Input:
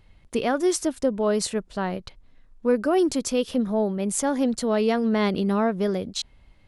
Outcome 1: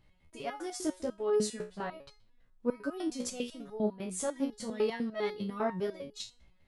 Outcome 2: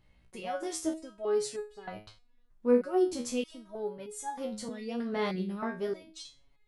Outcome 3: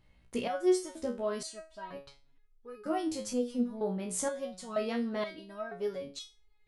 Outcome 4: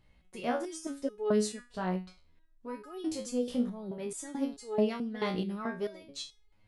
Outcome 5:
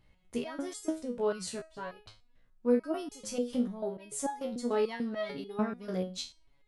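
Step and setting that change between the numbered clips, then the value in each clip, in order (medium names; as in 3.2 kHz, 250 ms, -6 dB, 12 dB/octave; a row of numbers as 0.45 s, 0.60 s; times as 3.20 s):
resonator arpeggio, rate: 10 Hz, 3.2 Hz, 2.1 Hz, 4.6 Hz, 6.8 Hz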